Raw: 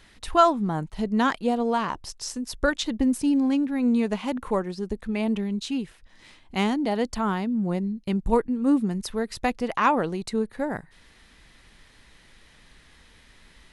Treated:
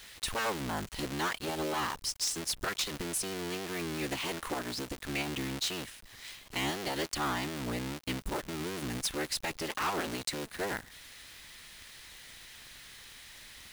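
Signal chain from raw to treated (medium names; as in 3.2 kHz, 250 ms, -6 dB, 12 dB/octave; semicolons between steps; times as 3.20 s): cycle switcher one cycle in 3, inverted; tilt shelf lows -8.5 dB, about 1.3 kHz; peak limiter -16 dBFS, peak gain reduction 16 dB; companded quantiser 4-bit; saturation -26 dBFS, distortion -11 dB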